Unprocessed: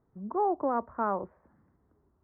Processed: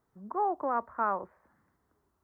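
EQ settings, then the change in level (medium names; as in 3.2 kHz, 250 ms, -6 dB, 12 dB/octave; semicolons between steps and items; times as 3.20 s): tilt shelf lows -8 dB, about 870 Hz; 0.0 dB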